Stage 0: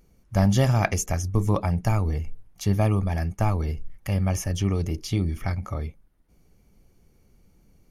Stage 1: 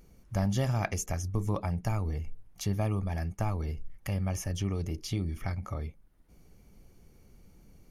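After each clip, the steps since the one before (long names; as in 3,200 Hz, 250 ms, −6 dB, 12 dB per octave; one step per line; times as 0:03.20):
downward compressor 1.5 to 1, threshold −47 dBFS, peak gain reduction 11 dB
level +2 dB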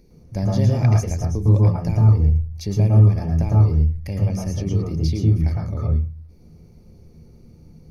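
convolution reverb RT60 0.30 s, pre-delay 106 ms, DRR −1.5 dB
level −3.5 dB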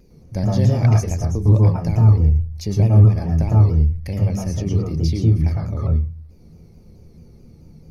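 pitch modulation by a square or saw wave saw down 4.6 Hz, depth 100 cents
level +1.5 dB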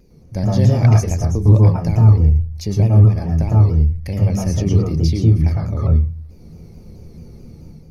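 automatic gain control gain up to 7 dB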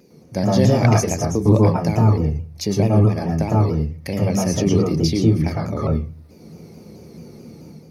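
high-pass filter 200 Hz 12 dB per octave
level +5 dB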